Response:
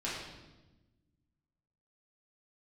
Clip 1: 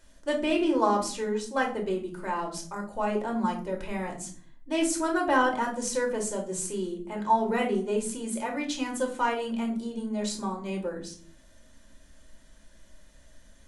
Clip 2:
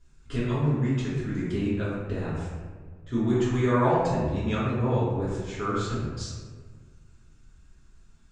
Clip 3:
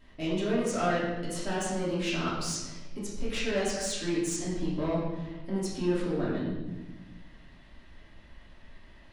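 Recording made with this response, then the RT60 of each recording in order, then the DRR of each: 3; not exponential, 1.6 s, 1.1 s; 0.5, -11.0, -8.5 dB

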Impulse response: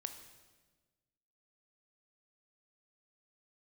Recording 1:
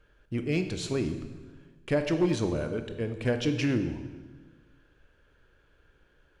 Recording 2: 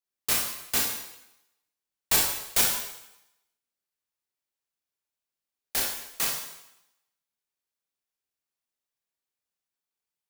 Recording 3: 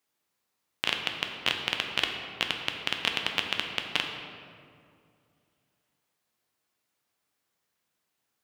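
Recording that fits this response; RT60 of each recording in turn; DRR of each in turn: 1; 1.3, 0.85, 2.4 s; 7.0, -2.5, 2.5 dB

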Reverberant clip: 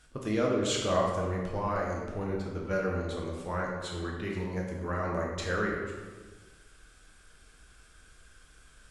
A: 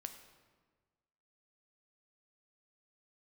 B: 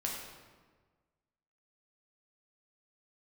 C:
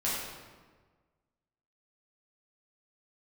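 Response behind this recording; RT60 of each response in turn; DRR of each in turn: B; 1.5, 1.4, 1.4 s; 6.5, -2.5, -8.5 dB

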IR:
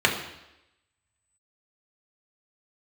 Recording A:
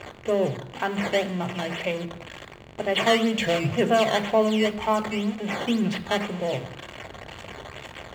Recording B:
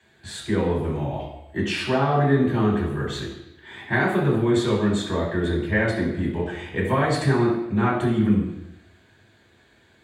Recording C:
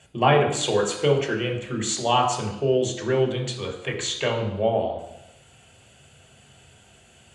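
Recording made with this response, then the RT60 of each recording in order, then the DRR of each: C; 0.90, 0.90, 0.90 s; 9.0, -8.5, -1.0 dB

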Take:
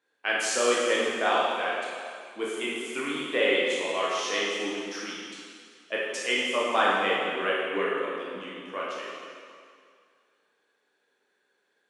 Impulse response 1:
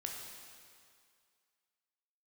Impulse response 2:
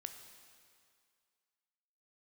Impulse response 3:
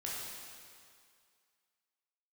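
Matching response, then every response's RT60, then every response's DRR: 3; 2.2, 2.2, 2.2 s; 0.0, 6.0, -6.0 dB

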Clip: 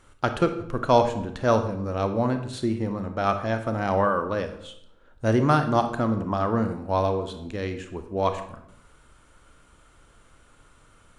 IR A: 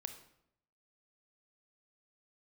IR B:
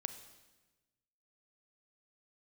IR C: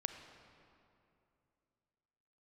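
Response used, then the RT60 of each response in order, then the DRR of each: A; 0.75, 1.2, 2.7 s; 7.5, 9.5, 6.5 dB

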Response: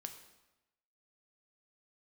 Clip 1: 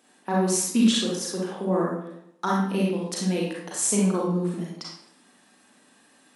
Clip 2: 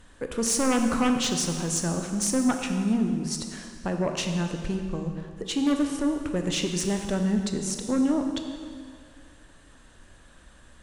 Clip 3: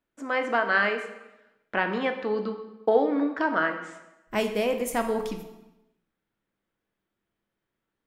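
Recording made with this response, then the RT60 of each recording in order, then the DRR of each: 3; 0.75, 2.1, 1.0 s; -4.5, 4.5, 5.5 dB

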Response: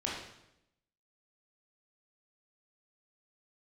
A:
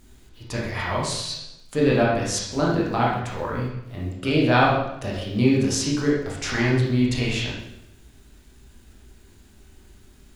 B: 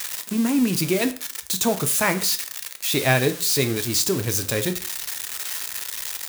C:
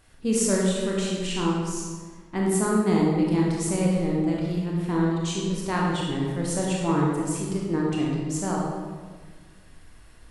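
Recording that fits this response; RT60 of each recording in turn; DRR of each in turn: A; 0.85, 0.45, 1.5 s; -4.5, 8.0, -4.0 dB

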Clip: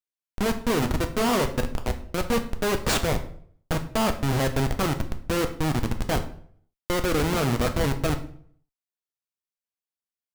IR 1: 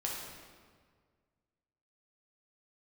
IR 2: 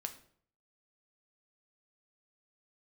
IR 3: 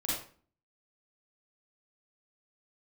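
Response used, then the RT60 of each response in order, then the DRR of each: 2; 1.8, 0.60, 0.45 s; -3.5, 5.5, -7.0 dB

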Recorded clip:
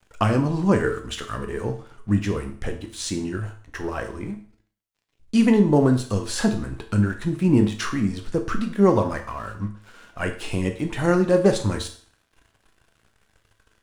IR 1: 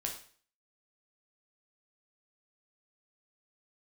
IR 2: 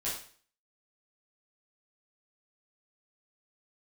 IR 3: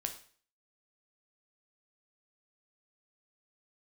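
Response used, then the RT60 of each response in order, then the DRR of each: 3; 0.45, 0.45, 0.45 s; 0.5, -9.0, 5.0 dB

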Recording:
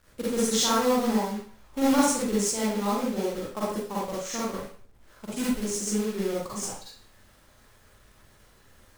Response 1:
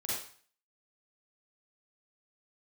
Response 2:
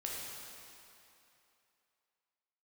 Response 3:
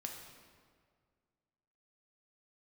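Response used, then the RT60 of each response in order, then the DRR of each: 1; 0.45, 2.8, 1.9 s; -8.0, -4.0, 1.5 dB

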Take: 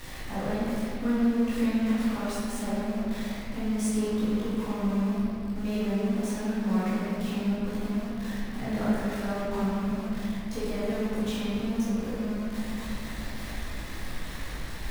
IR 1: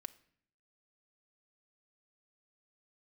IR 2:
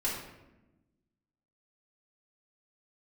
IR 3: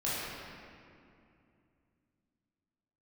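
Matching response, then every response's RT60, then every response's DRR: 3; 0.60, 1.0, 2.5 s; 8.5, -7.0, -10.0 dB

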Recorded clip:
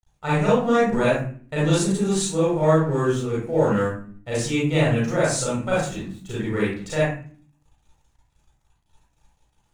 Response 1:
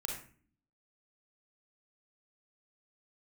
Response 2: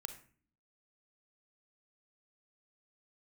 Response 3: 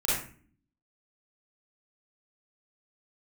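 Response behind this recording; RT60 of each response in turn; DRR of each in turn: 3; 0.45, 0.45, 0.45 s; 0.0, 8.0, -8.5 dB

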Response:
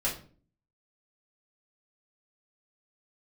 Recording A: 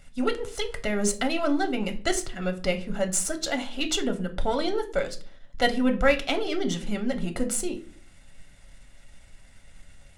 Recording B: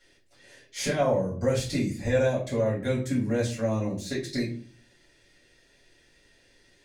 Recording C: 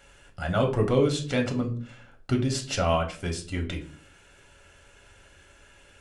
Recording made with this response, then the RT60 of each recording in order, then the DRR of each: B; 0.45, 0.45, 0.45 s; 6.0, -7.5, 2.0 dB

